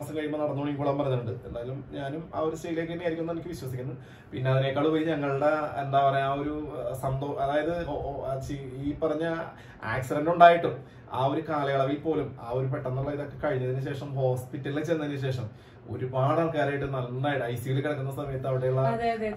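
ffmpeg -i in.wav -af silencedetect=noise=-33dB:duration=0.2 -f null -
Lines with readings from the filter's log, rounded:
silence_start: 3.94
silence_end: 4.33 | silence_duration: 0.39
silence_start: 9.49
silence_end: 9.83 | silence_duration: 0.34
silence_start: 10.79
silence_end: 11.12 | silence_duration: 0.34
silence_start: 15.48
silence_end: 15.89 | silence_duration: 0.41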